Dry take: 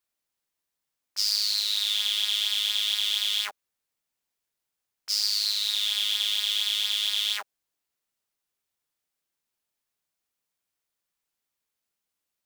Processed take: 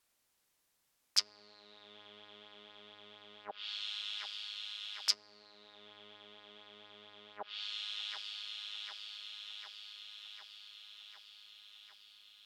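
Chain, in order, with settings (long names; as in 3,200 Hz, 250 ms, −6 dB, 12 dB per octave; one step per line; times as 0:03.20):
delay with a low-pass on its return 752 ms, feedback 70%, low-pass 3,800 Hz, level −21 dB
treble cut that deepens with the level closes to 350 Hz, closed at −23.5 dBFS
level +7.5 dB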